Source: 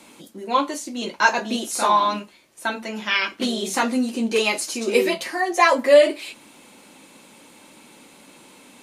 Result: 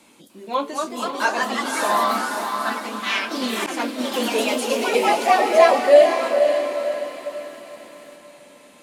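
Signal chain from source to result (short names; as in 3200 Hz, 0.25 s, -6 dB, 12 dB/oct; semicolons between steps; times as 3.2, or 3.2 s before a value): diffused feedback echo 0.529 s, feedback 48%, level -5 dB; dynamic EQ 580 Hz, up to +6 dB, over -31 dBFS, Q 2.5; echoes that change speed 0.297 s, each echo +2 st, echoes 3; 3.66–4.12 expander -14 dBFS; gain -5 dB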